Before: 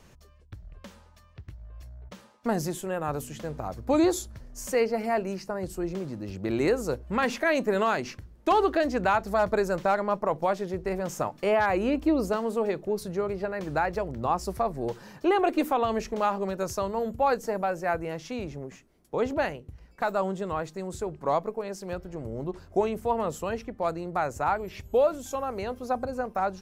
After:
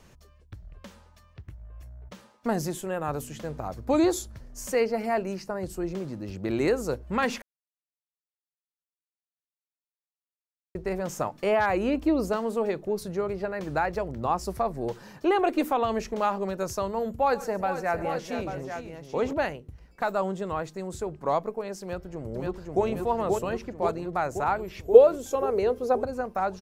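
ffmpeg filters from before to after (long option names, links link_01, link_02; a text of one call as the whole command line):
ffmpeg -i in.wav -filter_complex "[0:a]asettb=1/sr,asplit=3[link_01][link_02][link_03];[link_01]atrim=end=1.424[link_04];[link_02]atrim=start=1.42:end=2.11,asetpts=PTS-STARTPTS,afade=type=in:duration=0.004:curve=qsin,afade=type=out:start_time=0.686:duration=0.004:curve=qsin,equalizer=frequency=4400:width=1.5:gain=-7.5[link_05];[link_03]atrim=start=2.106[link_06];[link_04][link_05]acrossfade=duration=0.004:curve1=hsin:curve2=qsin[link_07];[link_07][link_06]acrossfade=duration=0.004:curve1=qsin:curve2=hsin,asettb=1/sr,asplit=3[link_08][link_09][link_10];[link_08]atrim=end=17.124[link_11];[link_09]atrim=start=17.12:end=19.33,asetpts=PTS-STARTPTS,afade=type=in:duration=0.004:curve=qsin,afade=type=out:start_time=2.206:duration=0.004:curve=qsin,aecho=1:1:100|138|455|841:0.112|0.112|0.299|0.355,atrim=end_sample=97461[link_12];[link_10]atrim=start=19.326[link_13];[link_11][link_12]acrossfade=duration=0.004:curve1=hsin:curve2=qsin[link_14];[link_14][link_13]acrossfade=duration=0.004:curve1=qsin:curve2=hsin,asplit=2[link_15][link_16];[link_16]afade=type=in:start_time=21.81:duration=0.01,afade=type=out:start_time=22.85:duration=0.01,aecho=0:1:530|1060|1590|2120|2650|3180|3710|4240|4770|5300|5830:0.794328|0.516313|0.335604|0.218142|0.141793|0.0921652|0.0599074|0.0389398|0.0253109|0.0164521|0.0106938[link_17];[link_15][link_17]amix=inputs=2:normalize=0,asettb=1/sr,asplit=3[link_18][link_19][link_20];[link_18]atrim=end=24.854[link_21];[link_19]atrim=start=24.85:end=26.04,asetpts=PTS-STARTPTS,afade=type=in:duration=0.004:curve=qsin,afade=type=out:start_time=1.186:duration=0.004:curve=qsin,equalizer=frequency=440:width_type=o:width=0.45:gain=14.5[link_22];[link_20]atrim=start=26.036[link_23];[link_21][link_22]acrossfade=duration=0.004:curve1=hsin:curve2=qsin[link_24];[link_24][link_23]acrossfade=duration=0.004:curve1=qsin:curve2=hsin,asplit=3[link_25][link_26][link_27];[link_25]atrim=end=7.42,asetpts=PTS-STARTPTS,afade=type=out:start_time=7.416:duration=0.004:curve=hsin[link_28];[link_26]atrim=start=7.42:end=10.75,asetpts=PTS-STARTPTS,volume=0[link_29];[link_27]atrim=start=10.75,asetpts=PTS-STARTPTS,afade=type=in:duration=0.004:curve=hsin[link_30];[link_28][link_29][link_30]concat=n=3:v=0:a=1" out.wav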